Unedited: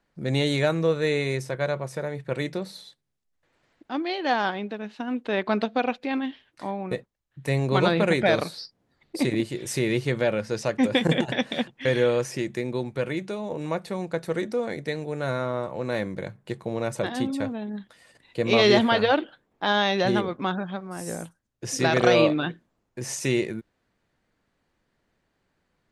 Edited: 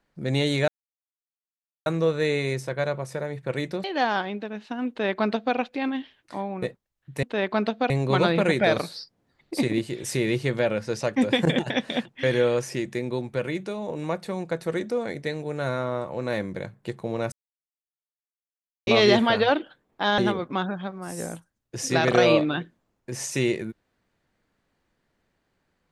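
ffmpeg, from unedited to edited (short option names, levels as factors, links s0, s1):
-filter_complex "[0:a]asplit=8[s0][s1][s2][s3][s4][s5][s6][s7];[s0]atrim=end=0.68,asetpts=PTS-STARTPTS,afade=t=out:st=0.676:d=0.004:c=hsin,apad=pad_dur=1.18[s8];[s1]atrim=start=0.68:end=2.662,asetpts=PTS-STARTPTS,afade=t=in:d=0.004:c=hsin[s9];[s2]atrim=start=4.128:end=7.522[s10];[s3]atrim=start=5.178:end=5.852[s11];[s4]atrim=start=7.518:end=16.94,asetpts=PTS-STARTPTS,afade=t=out:st=9.418:d=0.004:c=hsin[s12];[s5]atrim=start=16.94:end=18.49,asetpts=PTS-STARTPTS,volume=0[s13];[s6]atrim=start=18.49:end=19.802,asetpts=PTS-STARTPTS,afade=t=in:d=0.004:c=hsin[s14];[s7]atrim=start=20.068[s15];[s8][s9]concat=n=2:v=0:a=1[s16];[s16][s10]acrossfade=d=0.004:c1=hsin:c2=hsin[s17];[s17][s11]acrossfade=d=0.004:c1=hsin:c2=hsin[s18];[s12][s13][s14]concat=n=3:v=0:a=1[s19];[s18][s19]acrossfade=d=0.004:c1=hsin:c2=hsin[s20];[s20][s15]acrossfade=d=0.004:c1=hsin:c2=hsin"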